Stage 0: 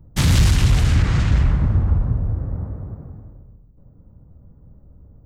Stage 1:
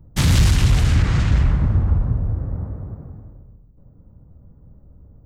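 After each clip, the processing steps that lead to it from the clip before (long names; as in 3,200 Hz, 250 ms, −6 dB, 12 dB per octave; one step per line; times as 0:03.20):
no processing that can be heard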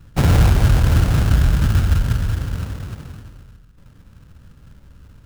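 sample-rate reduction 1,500 Hz, jitter 20%
level +1.5 dB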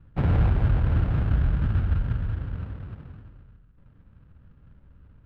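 high-frequency loss of the air 490 metres
level −7.5 dB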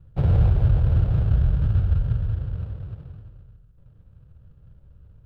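octave-band graphic EQ 125/250/500/1,000/2,000 Hz +4/−11/+3/−6/−10 dB
level +2.5 dB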